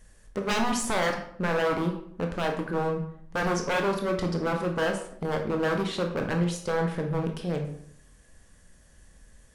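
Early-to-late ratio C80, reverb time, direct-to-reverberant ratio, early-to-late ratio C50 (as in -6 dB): 10.5 dB, 0.65 s, 2.5 dB, 7.5 dB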